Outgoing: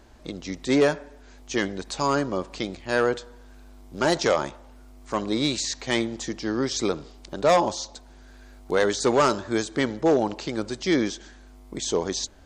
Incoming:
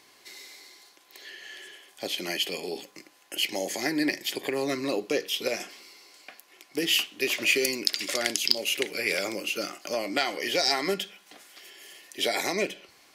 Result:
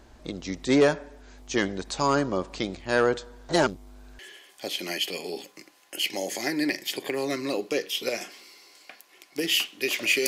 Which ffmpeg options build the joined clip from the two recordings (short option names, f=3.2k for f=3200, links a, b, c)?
-filter_complex "[0:a]apad=whole_dur=10.27,atrim=end=10.27,asplit=2[a][b];[a]atrim=end=3.492[c];[b]atrim=start=3.488:end=4.192,asetpts=PTS-STARTPTS,areverse[d];[1:a]atrim=start=1.578:end=7.66[e];[c][d]acrossfade=d=0.004:c1=hsin:c2=hsin[f];[f][e]acrossfade=d=0.004:c1=hsin:c2=hsin"